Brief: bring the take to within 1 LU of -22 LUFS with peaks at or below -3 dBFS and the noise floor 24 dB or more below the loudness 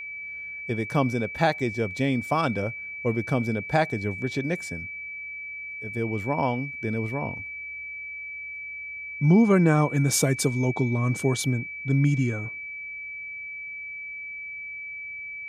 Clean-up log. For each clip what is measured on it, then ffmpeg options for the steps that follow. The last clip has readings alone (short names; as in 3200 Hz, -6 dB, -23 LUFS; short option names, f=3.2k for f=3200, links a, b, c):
steady tone 2300 Hz; tone level -34 dBFS; loudness -27.0 LUFS; peak -8.5 dBFS; loudness target -22.0 LUFS
-> -af "bandreject=f=2.3k:w=30"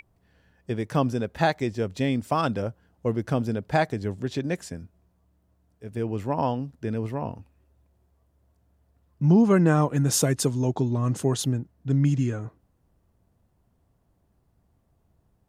steady tone none; loudness -25.5 LUFS; peak -8.5 dBFS; loudness target -22.0 LUFS
-> -af "volume=3.5dB"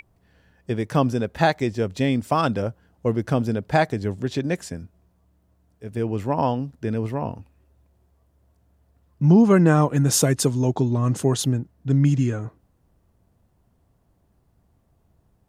loudness -22.0 LUFS; peak -5.0 dBFS; noise floor -65 dBFS